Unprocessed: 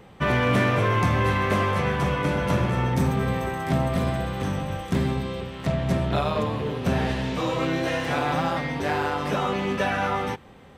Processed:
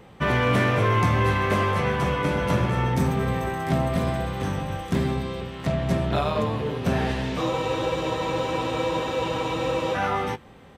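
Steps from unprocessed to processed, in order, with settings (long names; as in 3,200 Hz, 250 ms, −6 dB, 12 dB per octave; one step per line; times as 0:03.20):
double-tracking delay 18 ms −13.5 dB
frozen spectrum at 0:07.52, 2.44 s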